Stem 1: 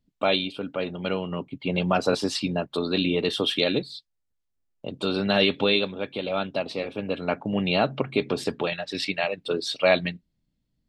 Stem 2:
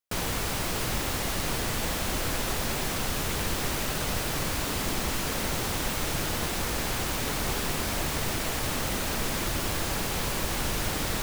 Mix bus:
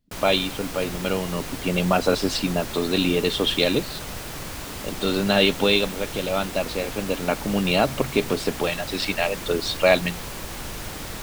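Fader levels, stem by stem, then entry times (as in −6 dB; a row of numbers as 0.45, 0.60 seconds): +2.5, −4.5 decibels; 0.00, 0.00 seconds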